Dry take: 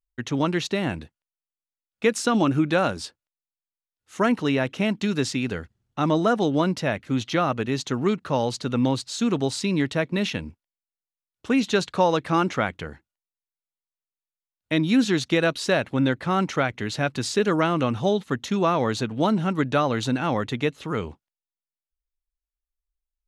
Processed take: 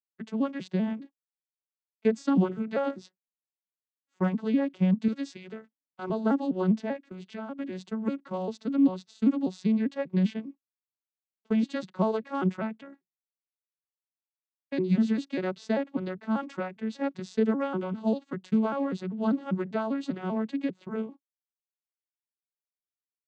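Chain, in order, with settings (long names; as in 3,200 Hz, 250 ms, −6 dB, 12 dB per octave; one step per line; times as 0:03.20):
vocoder with an arpeggio as carrier minor triad, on F#3, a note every 197 ms
noise gate −43 dBFS, range −12 dB
0:05.08–0:06.10: low-shelf EQ 400 Hz −10.5 dB
0:07.09–0:07.59: downward compressor 2 to 1, threshold −37 dBFS, peak gain reduction 9 dB
level −4 dB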